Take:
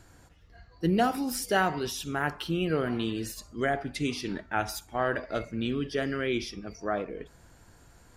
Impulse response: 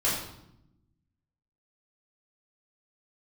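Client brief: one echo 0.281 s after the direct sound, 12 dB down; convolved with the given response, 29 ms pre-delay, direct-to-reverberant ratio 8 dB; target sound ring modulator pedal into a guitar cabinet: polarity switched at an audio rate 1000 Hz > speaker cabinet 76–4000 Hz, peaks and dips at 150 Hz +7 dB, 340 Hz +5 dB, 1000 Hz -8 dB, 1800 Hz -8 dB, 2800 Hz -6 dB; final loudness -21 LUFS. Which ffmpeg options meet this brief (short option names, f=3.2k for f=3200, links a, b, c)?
-filter_complex "[0:a]aecho=1:1:281:0.251,asplit=2[a][b];[1:a]atrim=start_sample=2205,adelay=29[c];[b][c]afir=irnorm=-1:irlink=0,volume=-18.5dB[d];[a][d]amix=inputs=2:normalize=0,aeval=exprs='val(0)*sgn(sin(2*PI*1000*n/s))':c=same,highpass=76,equalizer=f=150:t=q:w=4:g=7,equalizer=f=340:t=q:w=4:g=5,equalizer=f=1k:t=q:w=4:g=-8,equalizer=f=1.8k:t=q:w=4:g=-8,equalizer=f=2.8k:t=q:w=4:g=-6,lowpass=f=4k:w=0.5412,lowpass=f=4k:w=1.3066,volume=10dB"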